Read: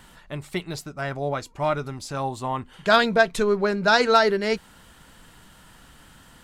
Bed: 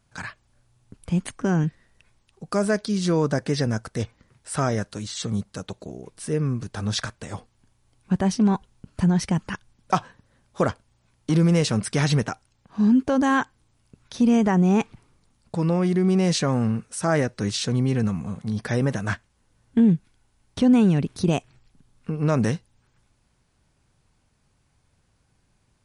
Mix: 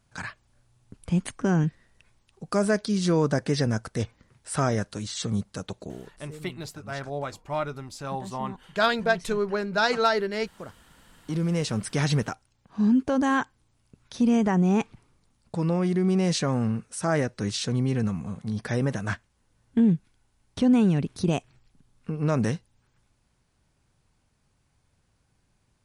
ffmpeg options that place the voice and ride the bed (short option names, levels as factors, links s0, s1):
-filter_complex "[0:a]adelay=5900,volume=0.562[s0];[1:a]volume=5.62,afade=t=out:st=5.93:d=0.33:silence=0.125893,afade=t=in:st=10.84:d=1.21:silence=0.158489[s1];[s0][s1]amix=inputs=2:normalize=0"